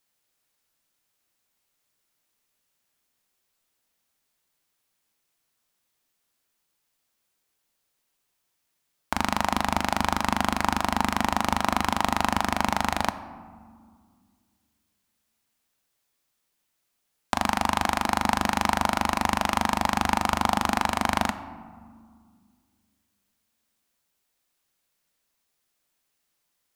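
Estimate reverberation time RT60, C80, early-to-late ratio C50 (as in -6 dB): 1.9 s, 14.5 dB, 13.5 dB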